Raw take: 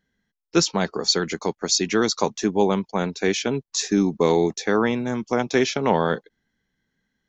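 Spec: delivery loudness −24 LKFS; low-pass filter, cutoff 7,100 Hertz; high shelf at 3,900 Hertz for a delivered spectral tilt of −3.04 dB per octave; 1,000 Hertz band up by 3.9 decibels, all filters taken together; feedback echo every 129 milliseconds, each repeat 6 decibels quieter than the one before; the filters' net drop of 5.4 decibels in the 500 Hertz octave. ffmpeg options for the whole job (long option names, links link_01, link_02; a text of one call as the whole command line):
ffmpeg -i in.wav -af "lowpass=7100,equalizer=frequency=500:width_type=o:gain=-8.5,equalizer=frequency=1000:width_type=o:gain=7,highshelf=frequency=3900:gain=5,aecho=1:1:129|258|387|516|645|774:0.501|0.251|0.125|0.0626|0.0313|0.0157,volume=-2.5dB" out.wav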